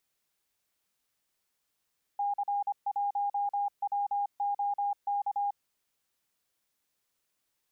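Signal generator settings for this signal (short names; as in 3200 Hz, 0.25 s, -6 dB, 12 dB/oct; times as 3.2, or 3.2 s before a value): Morse "C1WOK" 25 wpm 811 Hz -27 dBFS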